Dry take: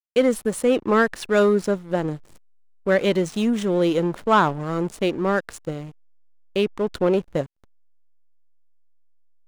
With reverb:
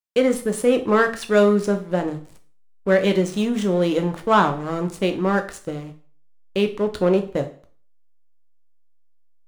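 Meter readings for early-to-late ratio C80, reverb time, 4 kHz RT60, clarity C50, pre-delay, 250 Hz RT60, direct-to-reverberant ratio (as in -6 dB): 18.0 dB, 0.45 s, 0.40 s, 13.5 dB, 5 ms, 0.40 s, 6.0 dB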